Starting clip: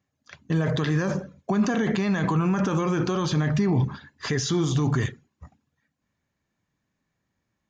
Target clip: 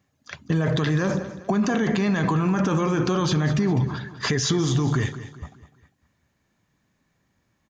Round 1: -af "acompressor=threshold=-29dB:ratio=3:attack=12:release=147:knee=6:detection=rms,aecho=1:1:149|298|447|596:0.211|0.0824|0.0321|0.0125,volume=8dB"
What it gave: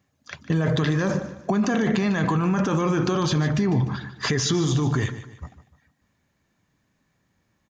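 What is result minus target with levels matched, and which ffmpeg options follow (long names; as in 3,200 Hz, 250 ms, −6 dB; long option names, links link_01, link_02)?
echo 52 ms early
-af "acompressor=threshold=-29dB:ratio=3:attack=12:release=147:knee=6:detection=rms,aecho=1:1:201|402|603|804:0.211|0.0824|0.0321|0.0125,volume=8dB"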